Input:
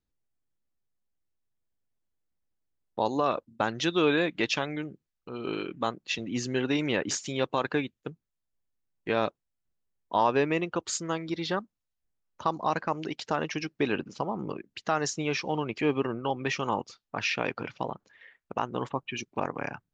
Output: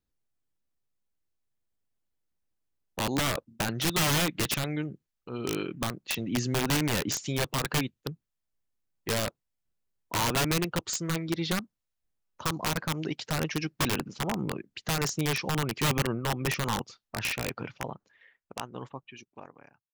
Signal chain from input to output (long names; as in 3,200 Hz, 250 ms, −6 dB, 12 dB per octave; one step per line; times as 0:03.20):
fade-out on the ending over 3.27 s
wrap-around overflow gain 21.5 dB
dynamic equaliser 130 Hz, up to +7 dB, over −49 dBFS, Q 1